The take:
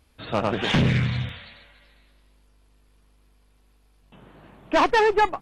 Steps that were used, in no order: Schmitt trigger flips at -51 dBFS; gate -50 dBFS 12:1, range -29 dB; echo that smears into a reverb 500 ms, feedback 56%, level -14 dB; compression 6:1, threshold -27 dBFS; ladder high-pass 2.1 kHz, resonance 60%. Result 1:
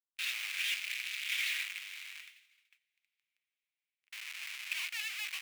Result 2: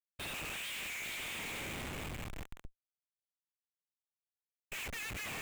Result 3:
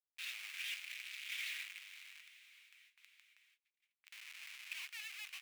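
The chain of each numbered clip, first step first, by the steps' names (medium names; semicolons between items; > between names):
Schmitt trigger > ladder high-pass > compression > echo that smears into a reverb > gate; ladder high-pass > compression > echo that smears into a reverb > Schmitt trigger > gate; compression > Schmitt trigger > echo that smears into a reverb > gate > ladder high-pass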